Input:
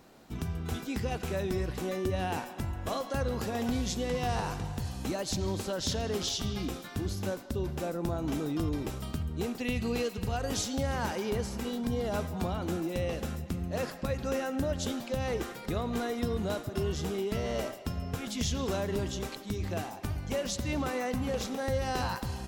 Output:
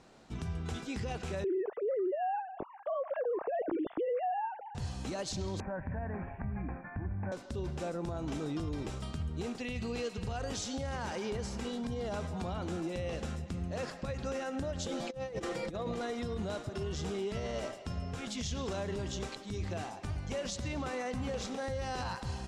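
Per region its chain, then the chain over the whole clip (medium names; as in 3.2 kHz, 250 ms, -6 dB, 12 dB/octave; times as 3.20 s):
1.44–4.75 s: formants replaced by sine waves + low-pass 2.1 kHz + tilt shelf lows +9 dB, about 1.1 kHz
5.60–7.32 s: steep low-pass 2.3 kHz 96 dB/octave + comb 1.2 ms, depth 58% + compression 2.5:1, threshold -32 dBFS
14.86–16.01 s: comb 6 ms, depth 59% + small resonant body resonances 300/530 Hz, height 7 dB, ringing for 20 ms + compressor with a negative ratio -31 dBFS, ratio -0.5
whole clip: low-pass 8.8 kHz 24 dB/octave; peaking EQ 280 Hz -2.5 dB 0.77 oct; peak limiter -26.5 dBFS; trim -1.5 dB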